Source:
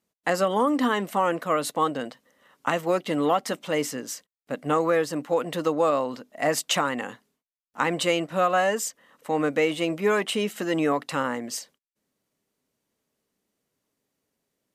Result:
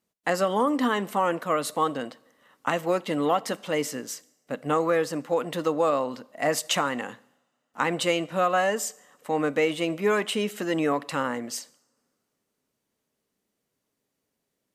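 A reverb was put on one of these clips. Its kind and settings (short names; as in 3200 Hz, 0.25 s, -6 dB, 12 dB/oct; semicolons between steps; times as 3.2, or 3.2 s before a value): two-slope reverb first 0.74 s, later 2.9 s, from -25 dB, DRR 19 dB; gain -1 dB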